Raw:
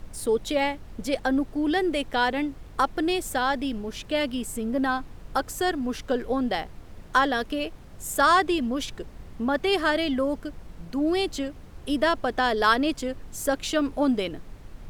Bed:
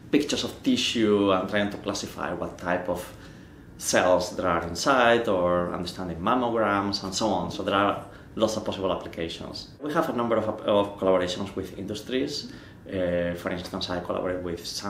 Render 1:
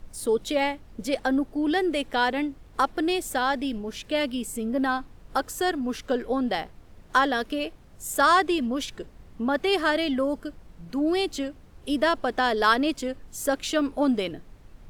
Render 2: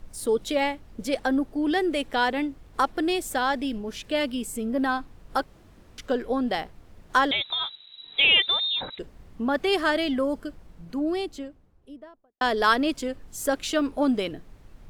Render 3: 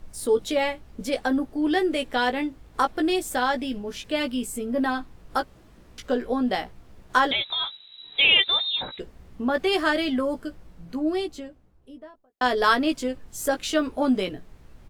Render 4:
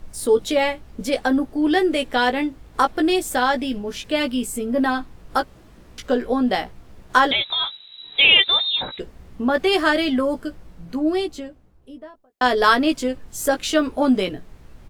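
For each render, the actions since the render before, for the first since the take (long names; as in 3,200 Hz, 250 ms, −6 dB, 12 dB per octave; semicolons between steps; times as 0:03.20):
noise reduction from a noise print 6 dB
0:05.44–0:05.98: fill with room tone; 0:07.31–0:08.99: voice inversion scrambler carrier 3,900 Hz; 0:10.45–0:12.41: fade out and dull
double-tracking delay 16 ms −6.5 dB
level +4.5 dB; brickwall limiter −3 dBFS, peak gain reduction 1 dB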